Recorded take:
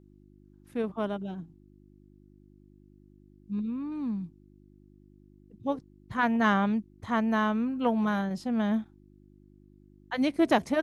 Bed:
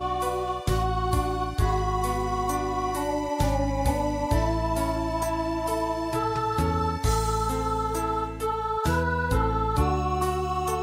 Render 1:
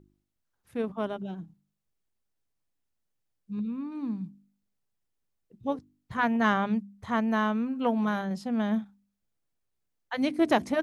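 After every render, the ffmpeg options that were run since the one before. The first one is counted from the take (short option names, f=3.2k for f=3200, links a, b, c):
-af "bandreject=f=50:t=h:w=4,bandreject=f=100:t=h:w=4,bandreject=f=150:t=h:w=4,bandreject=f=200:t=h:w=4,bandreject=f=250:t=h:w=4,bandreject=f=300:t=h:w=4,bandreject=f=350:t=h:w=4"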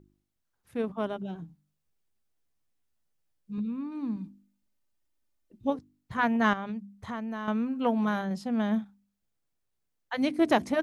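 -filter_complex "[0:a]asettb=1/sr,asplit=3[a][b][c];[a]atrim=end=1.344[d];[b]atrim=start=1.34:end=3.58,asetpts=PTS-STARTPTS,afade=t=in:d=0.004:c=qsin,afade=t=out:st=2.236:d=0.004:c=qsin,asplit=2[e][f];[f]adelay=13,volume=-4dB[g];[e][g]amix=inputs=2:normalize=0,atrim=end_sample=98784[h];[c]atrim=start=3.576[i];[d][h]acrossfade=d=0.004:c1=hsin:c2=qsin[j];[j][i]acrossfade=d=0.004:c1=qsin:c2=hsin,asettb=1/sr,asplit=3[k][l][m];[k]atrim=end=4.164[n];[l]atrim=start=4.16:end=5.7,asetpts=PTS-STARTPTS,afade=t=in:d=0.004:c=qsin,afade=t=out:st=1.536:d=0.004:c=qsin,aecho=1:1:3.3:0.65,atrim=end_sample=67914[o];[m]atrim=start=5.696[p];[n][o]acrossfade=d=0.004:c1=hsin:c2=qsin[q];[q][p]acrossfade=d=0.004:c1=qsin:c2=hsin,asettb=1/sr,asplit=3[r][s][t];[r]atrim=end=6.534[u];[s]atrim=start=6.53:end=7.48,asetpts=PTS-STARTPTS,afade=t=in:d=0.004:c=qsin,afade=t=out:st=0.946:d=0.004:c=qsin,acompressor=threshold=-32dB:ratio=6:attack=3.2:release=140:knee=1:detection=peak[v];[t]atrim=start=7.476[w];[u][v]acrossfade=d=0.004:c1=hsin:c2=qsin[x];[x][w]acrossfade=d=0.004:c1=qsin:c2=hsin"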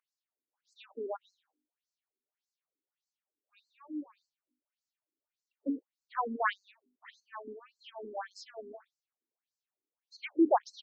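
-af "aeval=exprs='0.282*(cos(1*acos(clip(val(0)/0.282,-1,1)))-cos(1*PI/2))+0.0126*(cos(6*acos(clip(val(0)/0.282,-1,1)))-cos(6*PI/2))':c=same,afftfilt=real='re*between(b*sr/1024,310*pow(5900/310,0.5+0.5*sin(2*PI*1.7*pts/sr))/1.41,310*pow(5900/310,0.5+0.5*sin(2*PI*1.7*pts/sr))*1.41)':imag='im*between(b*sr/1024,310*pow(5900/310,0.5+0.5*sin(2*PI*1.7*pts/sr))/1.41,310*pow(5900/310,0.5+0.5*sin(2*PI*1.7*pts/sr))*1.41)':win_size=1024:overlap=0.75"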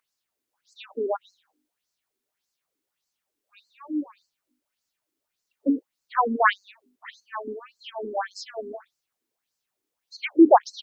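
-af "volume=11dB"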